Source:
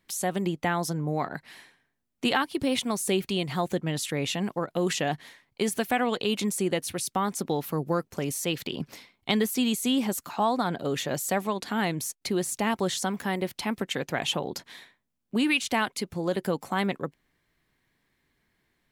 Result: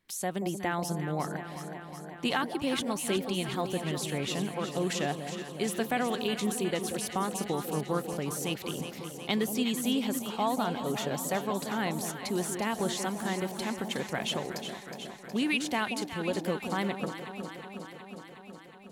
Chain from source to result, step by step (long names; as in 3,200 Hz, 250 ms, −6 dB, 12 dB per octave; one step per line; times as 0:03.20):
delay that swaps between a low-pass and a high-pass 183 ms, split 890 Hz, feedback 85%, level −7.5 dB
level −4.5 dB